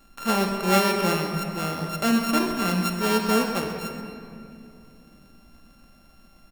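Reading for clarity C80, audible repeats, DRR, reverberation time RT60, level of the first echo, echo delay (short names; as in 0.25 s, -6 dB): 4.5 dB, 2, 2.0 dB, 2.6 s, -11.0 dB, 0.129 s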